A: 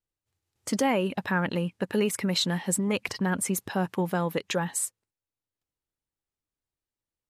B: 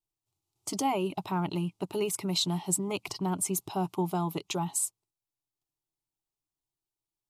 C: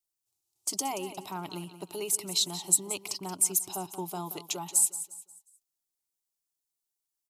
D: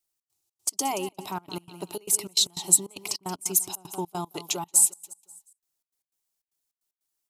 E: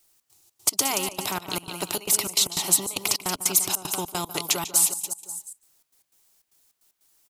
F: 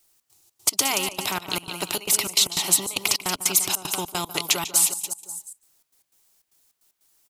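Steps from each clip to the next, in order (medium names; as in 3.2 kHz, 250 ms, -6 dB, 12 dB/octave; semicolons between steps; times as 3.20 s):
static phaser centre 340 Hz, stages 8
tone controls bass -8 dB, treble +12 dB; feedback delay 178 ms, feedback 37%, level -13 dB; trim -5 dB
trance gate "xx.xx.x.x" 152 bpm -24 dB; trim +5 dB
echo from a far wall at 25 m, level -23 dB; spectrum-flattening compressor 2:1
dynamic bell 2.6 kHz, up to +5 dB, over -40 dBFS, Q 0.75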